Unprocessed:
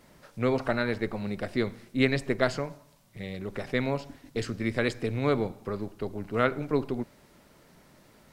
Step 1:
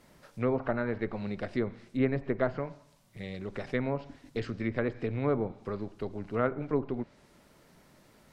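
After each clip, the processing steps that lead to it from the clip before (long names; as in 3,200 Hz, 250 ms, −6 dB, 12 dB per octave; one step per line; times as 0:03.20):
treble cut that deepens with the level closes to 1,300 Hz, closed at −22.5 dBFS
level −2.5 dB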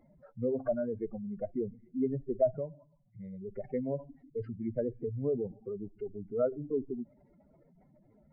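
expanding power law on the bin magnitudes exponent 3.1
hollow resonant body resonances 750/2,100 Hz, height 13 dB, ringing for 20 ms
level −3.5 dB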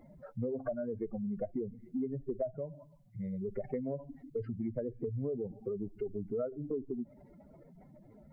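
downward compressor 6 to 1, threshold −40 dBFS, peak gain reduction 17 dB
level +6.5 dB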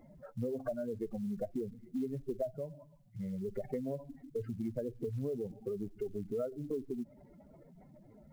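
floating-point word with a short mantissa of 4 bits
level −1 dB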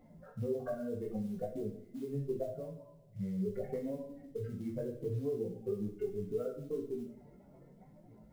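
chorus effect 0.73 Hz, delay 17.5 ms, depth 3.9 ms
coupled-rooms reverb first 0.53 s, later 2.4 s, from −25 dB, DRR 1 dB
level +1 dB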